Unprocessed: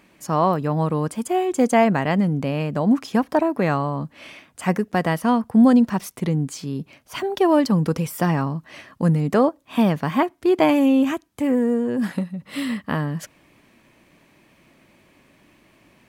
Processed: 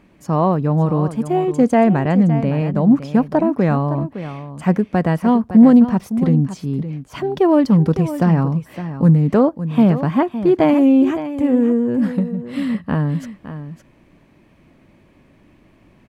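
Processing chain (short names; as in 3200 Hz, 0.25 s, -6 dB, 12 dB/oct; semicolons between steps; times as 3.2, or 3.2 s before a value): tilt -2.5 dB/oct; echo 0.562 s -12 dB; Doppler distortion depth 0.12 ms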